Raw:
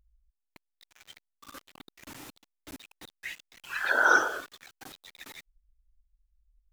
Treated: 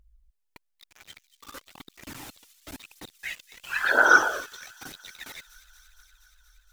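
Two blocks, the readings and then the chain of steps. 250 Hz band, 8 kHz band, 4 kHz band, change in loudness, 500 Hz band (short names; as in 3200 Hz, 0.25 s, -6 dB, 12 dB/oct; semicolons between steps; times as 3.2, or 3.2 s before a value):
+4.0 dB, +4.5 dB, +4.5 dB, +4.0 dB, +4.0 dB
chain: on a send: thin delay 0.235 s, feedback 76%, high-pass 4100 Hz, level -12 dB; on the sum: phaser 1 Hz, delay 2.4 ms, feedback 38%; gain +3.5 dB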